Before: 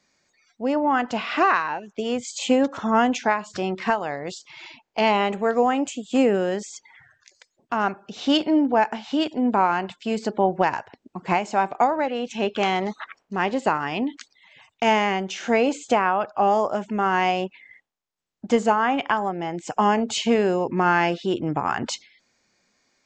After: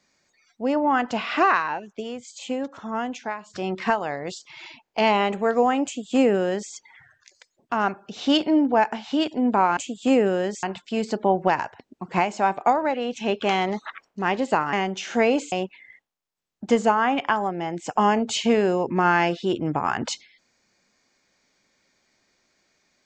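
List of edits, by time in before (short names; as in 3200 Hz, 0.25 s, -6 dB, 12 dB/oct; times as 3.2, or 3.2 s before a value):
1.82–3.75 dip -9 dB, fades 0.31 s
5.85–6.71 copy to 9.77
13.87–15.06 cut
15.85–17.33 cut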